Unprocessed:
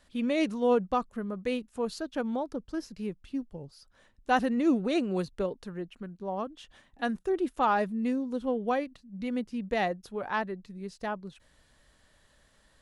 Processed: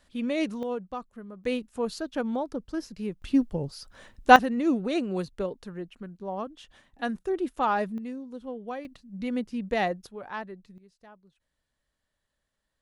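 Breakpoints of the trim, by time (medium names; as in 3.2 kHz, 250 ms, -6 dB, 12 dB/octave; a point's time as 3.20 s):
-0.5 dB
from 0.63 s -8 dB
from 1.44 s +2 dB
from 3.22 s +11.5 dB
from 4.36 s 0 dB
from 7.98 s -7.5 dB
from 8.85 s +2 dB
from 10.07 s -5.5 dB
from 10.78 s -18 dB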